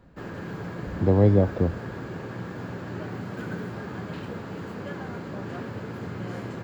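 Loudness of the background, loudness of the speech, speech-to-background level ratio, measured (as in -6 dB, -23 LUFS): -35.5 LUFS, -22.0 LUFS, 13.5 dB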